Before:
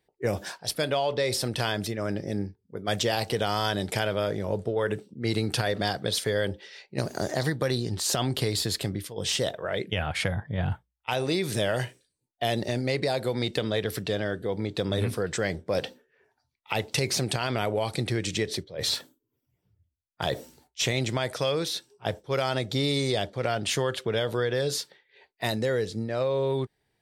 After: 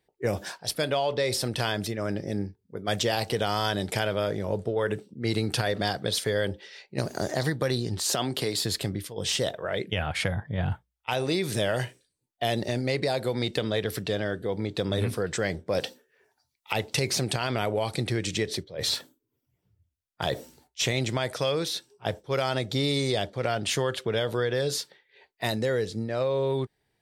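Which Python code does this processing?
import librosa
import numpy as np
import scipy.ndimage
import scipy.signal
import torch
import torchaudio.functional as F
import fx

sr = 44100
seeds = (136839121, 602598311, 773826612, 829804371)

y = fx.highpass(x, sr, hz=170.0, slope=12, at=(8.04, 8.63))
y = fx.bass_treble(y, sr, bass_db=-4, treble_db=9, at=(15.8, 16.73))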